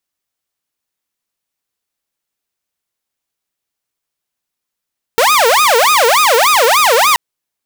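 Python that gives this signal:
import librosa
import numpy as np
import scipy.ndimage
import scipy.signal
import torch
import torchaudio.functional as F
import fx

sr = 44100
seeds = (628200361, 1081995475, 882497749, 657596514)

y = fx.siren(sr, length_s=1.98, kind='wail', low_hz=449.0, high_hz=1250.0, per_s=3.4, wave='saw', level_db=-5.0)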